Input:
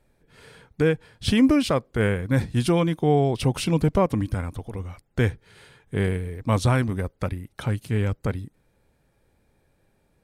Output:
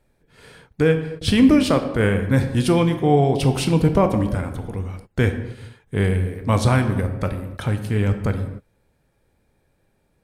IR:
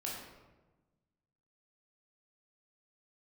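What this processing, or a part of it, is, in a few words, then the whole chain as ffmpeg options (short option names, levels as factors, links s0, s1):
keyed gated reverb: -filter_complex "[0:a]asplit=3[s0][s1][s2];[1:a]atrim=start_sample=2205[s3];[s1][s3]afir=irnorm=-1:irlink=0[s4];[s2]apad=whole_len=451198[s5];[s4][s5]sidechaingate=range=0.0224:threshold=0.00355:ratio=16:detection=peak,volume=0.668[s6];[s0][s6]amix=inputs=2:normalize=0"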